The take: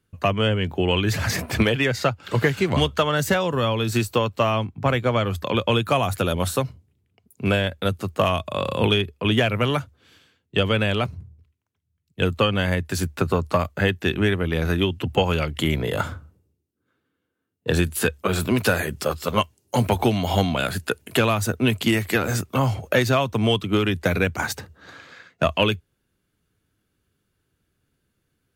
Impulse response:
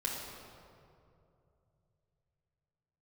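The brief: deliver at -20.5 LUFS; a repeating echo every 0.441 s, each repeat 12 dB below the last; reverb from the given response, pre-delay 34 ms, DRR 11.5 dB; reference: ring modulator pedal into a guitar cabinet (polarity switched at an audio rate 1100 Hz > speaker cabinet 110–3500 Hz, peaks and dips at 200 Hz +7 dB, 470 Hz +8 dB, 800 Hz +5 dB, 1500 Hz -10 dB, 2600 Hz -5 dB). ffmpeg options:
-filter_complex "[0:a]aecho=1:1:441|882|1323:0.251|0.0628|0.0157,asplit=2[a][b];[1:a]atrim=start_sample=2205,adelay=34[c];[b][c]afir=irnorm=-1:irlink=0,volume=-15.5dB[d];[a][d]amix=inputs=2:normalize=0,aeval=exprs='val(0)*sgn(sin(2*PI*1100*n/s))':c=same,highpass=110,equalizer=f=200:t=q:w=4:g=7,equalizer=f=470:t=q:w=4:g=8,equalizer=f=800:t=q:w=4:g=5,equalizer=f=1.5k:t=q:w=4:g=-10,equalizer=f=2.6k:t=q:w=4:g=-5,lowpass=f=3.5k:w=0.5412,lowpass=f=3.5k:w=1.3066,volume=2dB"

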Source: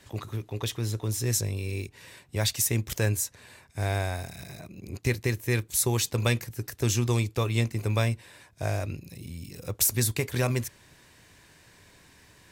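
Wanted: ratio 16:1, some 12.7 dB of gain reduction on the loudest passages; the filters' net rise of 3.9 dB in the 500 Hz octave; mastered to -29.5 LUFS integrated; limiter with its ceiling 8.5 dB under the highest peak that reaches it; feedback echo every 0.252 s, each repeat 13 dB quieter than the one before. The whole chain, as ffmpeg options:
-af "equalizer=f=500:t=o:g=5,acompressor=threshold=-32dB:ratio=16,alimiter=level_in=4dB:limit=-24dB:level=0:latency=1,volume=-4dB,aecho=1:1:252|504|756:0.224|0.0493|0.0108,volume=10.5dB"

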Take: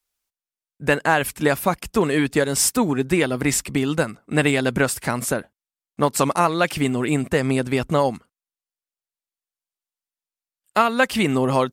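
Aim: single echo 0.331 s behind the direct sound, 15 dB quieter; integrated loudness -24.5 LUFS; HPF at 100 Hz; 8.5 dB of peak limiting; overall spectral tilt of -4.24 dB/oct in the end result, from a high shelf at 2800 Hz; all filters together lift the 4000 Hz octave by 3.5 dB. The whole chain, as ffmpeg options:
-af "highpass=100,highshelf=f=2.8k:g=-4,equalizer=f=4k:t=o:g=8,alimiter=limit=-10.5dB:level=0:latency=1,aecho=1:1:331:0.178,volume=-1.5dB"

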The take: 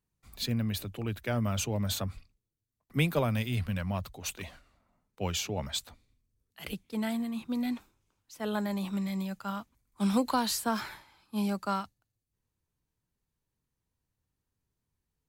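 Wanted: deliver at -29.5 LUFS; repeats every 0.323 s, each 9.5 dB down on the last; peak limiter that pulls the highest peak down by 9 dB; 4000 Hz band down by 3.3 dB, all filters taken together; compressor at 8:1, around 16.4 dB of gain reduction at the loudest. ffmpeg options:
-af "equalizer=f=4k:t=o:g=-4,acompressor=threshold=-40dB:ratio=8,alimiter=level_in=11dB:limit=-24dB:level=0:latency=1,volume=-11dB,aecho=1:1:323|646|969|1292:0.335|0.111|0.0365|0.012,volume=16dB"

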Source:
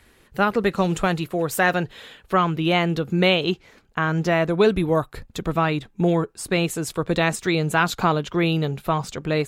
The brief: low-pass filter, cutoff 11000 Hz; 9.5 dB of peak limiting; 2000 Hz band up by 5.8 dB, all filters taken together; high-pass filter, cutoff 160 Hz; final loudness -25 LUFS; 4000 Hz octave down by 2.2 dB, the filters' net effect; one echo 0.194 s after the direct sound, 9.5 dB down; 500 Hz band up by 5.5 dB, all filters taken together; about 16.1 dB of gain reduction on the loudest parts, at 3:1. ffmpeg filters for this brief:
-af "highpass=160,lowpass=11k,equalizer=f=500:t=o:g=6.5,equalizer=f=2k:t=o:g=9,equalizer=f=4k:t=o:g=-8.5,acompressor=threshold=-31dB:ratio=3,alimiter=limit=-20dB:level=0:latency=1,aecho=1:1:194:0.335,volume=7.5dB"

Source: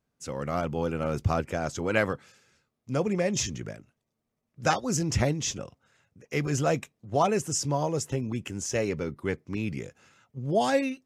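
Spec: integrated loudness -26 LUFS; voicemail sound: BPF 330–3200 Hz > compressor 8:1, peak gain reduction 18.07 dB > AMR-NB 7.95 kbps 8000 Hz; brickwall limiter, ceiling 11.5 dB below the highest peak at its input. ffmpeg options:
-af "alimiter=limit=-21.5dB:level=0:latency=1,highpass=330,lowpass=3.2k,acompressor=threshold=-45dB:ratio=8,volume=24.5dB" -ar 8000 -c:a libopencore_amrnb -b:a 7950

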